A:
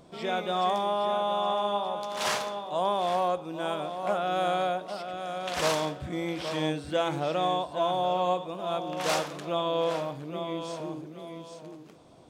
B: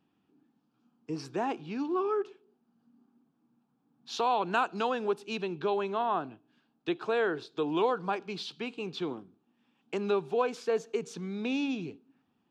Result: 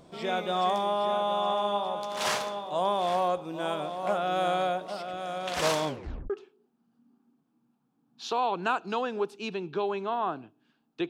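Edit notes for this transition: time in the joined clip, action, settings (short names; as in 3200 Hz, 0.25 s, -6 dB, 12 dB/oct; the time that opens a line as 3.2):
A
5.87 tape stop 0.43 s
6.3 switch to B from 2.18 s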